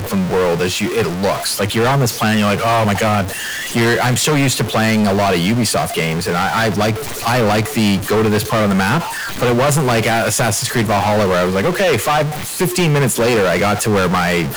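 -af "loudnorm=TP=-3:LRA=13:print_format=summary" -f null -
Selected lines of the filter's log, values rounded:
Input Integrated:    -15.4 LUFS
Input True Peak:      -8.0 dBTP
Input LRA:             0.7 LU
Input Threshold:     -25.4 LUFS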